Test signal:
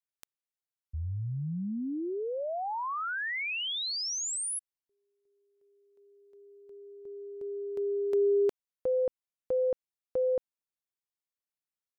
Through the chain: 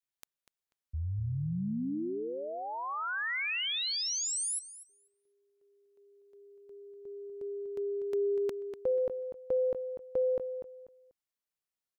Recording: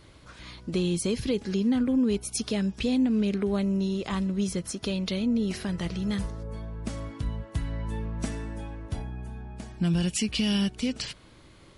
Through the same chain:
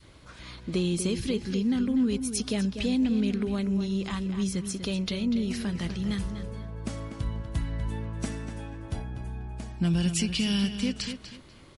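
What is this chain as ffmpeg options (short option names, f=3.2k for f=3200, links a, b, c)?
-filter_complex "[0:a]adynamicequalizer=threshold=0.00794:dfrequency=600:dqfactor=0.82:tfrequency=600:tqfactor=0.82:attack=5:release=100:ratio=0.375:range=3.5:mode=cutabove:tftype=bell,asplit=2[a][b];[b]adelay=244,lowpass=f=4.6k:p=1,volume=-9dB,asplit=2[c][d];[d]adelay=244,lowpass=f=4.6k:p=1,volume=0.26,asplit=2[e][f];[f]adelay=244,lowpass=f=4.6k:p=1,volume=0.26[g];[a][c][e][g]amix=inputs=4:normalize=0"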